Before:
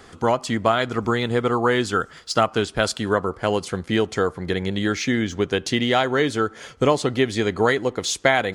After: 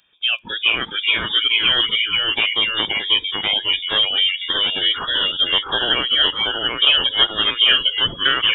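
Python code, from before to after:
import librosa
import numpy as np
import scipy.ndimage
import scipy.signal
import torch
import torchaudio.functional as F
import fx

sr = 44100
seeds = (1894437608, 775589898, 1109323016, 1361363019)

y = fx.fixed_phaser(x, sr, hz=1000.0, stages=8)
y = fx.freq_invert(y, sr, carrier_hz=3600)
y = fx.echo_pitch(y, sr, ms=387, semitones=-1, count=2, db_per_echo=-3.0)
y = fx.noise_reduce_blind(y, sr, reduce_db=18)
y = y * librosa.db_to_amplitude(4.5)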